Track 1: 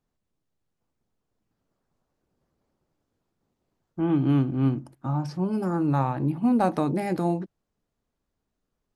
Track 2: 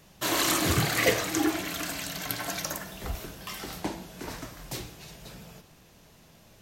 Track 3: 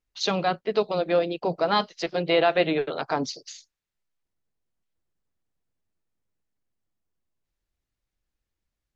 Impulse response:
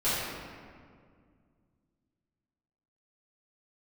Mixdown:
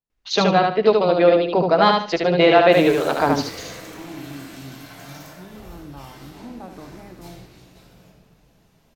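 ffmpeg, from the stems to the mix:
-filter_complex "[0:a]volume=-16.5dB,asplit=3[link_01][link_02][link_03];[link_02]volume=-9dB[link_04];[1:a]volume=29.5dB,asoftclip=hard,volume=-29.5dB,adelay=2500,volume=-14.5dB,asplit=2[link_05][link_06];[link_06]volume=-3.5dB[link_07];[2:a]highshelf=frequency=5300:gain=-10,acontrast=22,adelay=100,volume=2.5dB,asplit=2[link_08][link_09];[link_09]volume=-3.5dB[link_10];[link_03]apad=whole_len=401943[link_11];[link_05][link_11]sidechaincompress=threshold=-41dB:ratio=8:attack=16:release=1230[link_12];[3:a]atrim=start_sample=2205[link_13];[link_07][link_13]afir=irnorm=-1:irlink=0[link_14];[link_04][link_10]amix=inputs=2:normalize=0,aecho=0:1:74|148|222|296:1|0.28|0.0784|0.022[link_15];[link_01][link_12][link_08][link_14][link_15]amix=inputs=5:normalize=0"

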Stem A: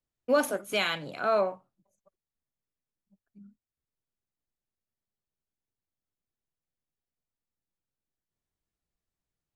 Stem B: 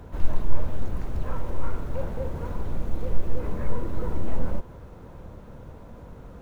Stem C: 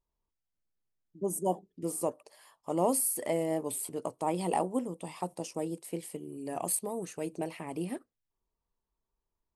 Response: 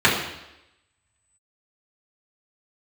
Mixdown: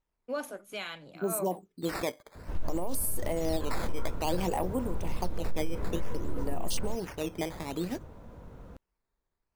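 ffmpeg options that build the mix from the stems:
-filter_complex "[0:a]volume=-10.5dB[link_01];[1:a]adelay=2350,volume=-4.5dB[link_02];[2:a]acrusher=samples=9:mix=1:aa=0.000001:lfo=1:lforange=14.4:lforate=0.57,volume=2dB,asplit=2[link_03][link_04];[link_04]apad=whole_len=421419[link_05];[link_01][link_05]sidechaincompress=threshold=-30dB:ratio=8:attack=16:release=127[link_06];[link_06][link_02][link_03]amix=inputs=3:normalize=0,alimiter=limit=-20.5dB:level=0:latency=1:release=53"

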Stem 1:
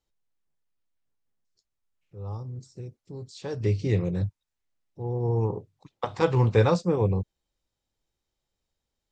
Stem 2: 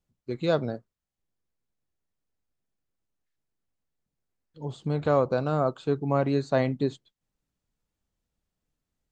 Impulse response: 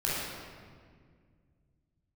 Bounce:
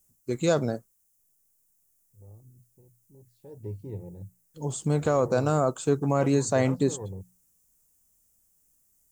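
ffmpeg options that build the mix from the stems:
-filter_complex "[0:a]afwtdn=0.0178,bandreject=frequency=60:width_type=h:width=6,bandreject=frequency=120:width_type=h:width=6,bandreject=frequency=180:width_type=h:width=6,tremolo=f=0.54:d=0.45,volume=-12dB[link_01];[1:a]alimiter=limit=-15.5dB:level=0:latency=1:release=16,aexciter=amount=12.5:drive=4.8:freq=6000,volume=3dB[link_02];[link_01][link_02]amix=inputs=2:normalize=0"

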